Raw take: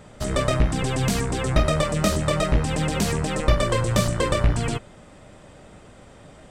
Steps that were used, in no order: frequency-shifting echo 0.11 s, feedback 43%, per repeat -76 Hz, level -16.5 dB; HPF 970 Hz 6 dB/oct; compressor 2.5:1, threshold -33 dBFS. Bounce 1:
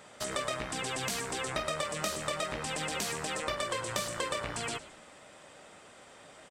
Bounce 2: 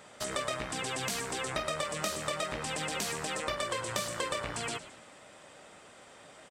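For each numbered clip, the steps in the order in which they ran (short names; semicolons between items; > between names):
HPF > compressor > frequency-shifting echo; frequency-shifting echo > HPF > compressor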